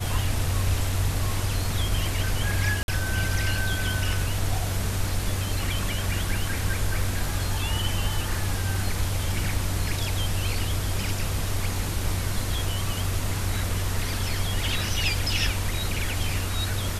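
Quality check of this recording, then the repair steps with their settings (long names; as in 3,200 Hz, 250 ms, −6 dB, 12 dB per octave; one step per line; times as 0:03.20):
0:02.83–0:02.88: drop-out 51 ms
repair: repair the gap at 0:02.83, 51 ms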